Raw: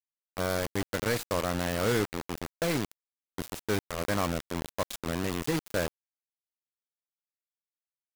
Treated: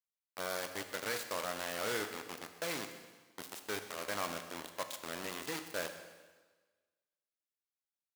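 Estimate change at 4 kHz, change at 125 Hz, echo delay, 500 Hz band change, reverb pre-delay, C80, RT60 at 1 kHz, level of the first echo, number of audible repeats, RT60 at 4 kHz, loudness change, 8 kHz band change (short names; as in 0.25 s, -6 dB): -4.5 dB, -20.0 dB, 0.128 s, -9.5 dB, 7 ms, 10.0 dB, 1.4 s, -18.0 dB, 3, 1.3 s, -8.0 dB, -4.5 dB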